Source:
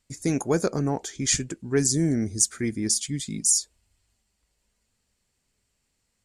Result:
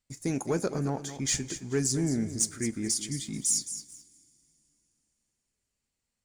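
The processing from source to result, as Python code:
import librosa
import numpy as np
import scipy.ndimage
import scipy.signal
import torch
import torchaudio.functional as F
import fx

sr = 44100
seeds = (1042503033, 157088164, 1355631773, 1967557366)

y = fx.echo_feedback(x, sr, ms=217, feedback_pct=27, wet_db=-12)
y = fx.leveller(y, sr, passes=1)
y = fx.rev_double_slope(y, sr, seeds[0], early_s=0.26, late_s=3.3, knee_db=-19, drr_db=15.5)
y = F.gain(torch.from_numpy(y), -8.5).numpy()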